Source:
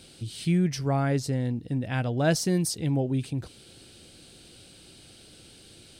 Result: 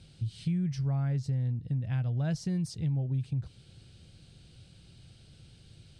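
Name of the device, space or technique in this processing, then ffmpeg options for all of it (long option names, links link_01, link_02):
jukebox: -af "lowpass=6800,lowshelf=frequency=200:width_type=q:width=1.5:gain=11.5,acompressor=threshold=-20dB:ratio=3,volume=-9dB"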